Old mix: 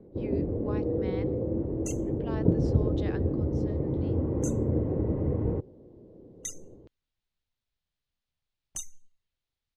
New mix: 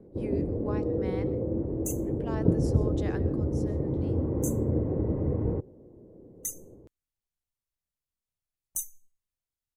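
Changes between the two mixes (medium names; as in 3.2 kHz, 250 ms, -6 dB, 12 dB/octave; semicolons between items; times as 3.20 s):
speech: send +8.5 dB; second sound -6.5 dB; master: remove resonant low-pass 3.9 kHz, resonance Q 1.7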